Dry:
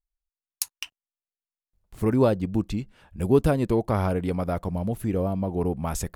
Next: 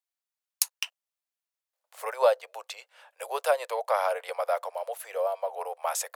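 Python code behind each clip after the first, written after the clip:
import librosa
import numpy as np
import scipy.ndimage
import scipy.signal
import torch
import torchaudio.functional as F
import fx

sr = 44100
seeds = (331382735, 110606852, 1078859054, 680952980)

y = scipy.signal.sosfilt(scipy.signal.butter(12, 510.0, 'highpass', fs=sr, output='sos'), x)
y = y * 10.0 ** (3.0 / 20.0)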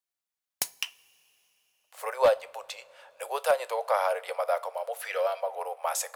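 y = 10.0 ** (-13.5 / 20.0) * (np.abs((x / 10.0 ** (-13.5 / 20.0) + 3.0) % 4.0 - 2.0) - 1.0)
y = fx.spec_box(y, sr, start_s=5.02, length_s=0.39, low_hz=1200.0, high_hz=6000.0, gain_db=10)
y = fx.rev_double_slope(y, sr, seeds[0], early_s=0.29, late_s=4.0, knee_db=-22, drr_db=13.5)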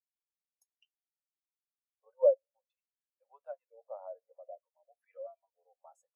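y = fx.filter_lfo_notch(x, sr, shape='sine', hz=0.54, low_hz=230.0, high_hz=3100.0, q=0.8)
y = fx.spectral_expand(y, sr, expansion=2.5)
y = y * 10.0 ** (-2.5 / 20.0)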